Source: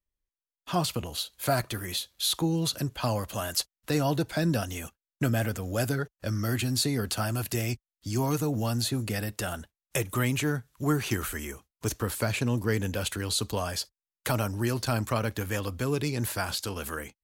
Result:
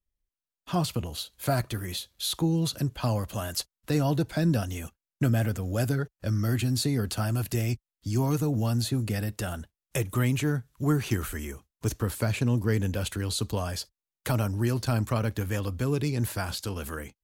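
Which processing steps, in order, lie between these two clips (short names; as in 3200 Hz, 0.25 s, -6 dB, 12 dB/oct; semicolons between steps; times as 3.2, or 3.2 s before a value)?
low shelf 310 Hz +7.5 dB; gain -3 dB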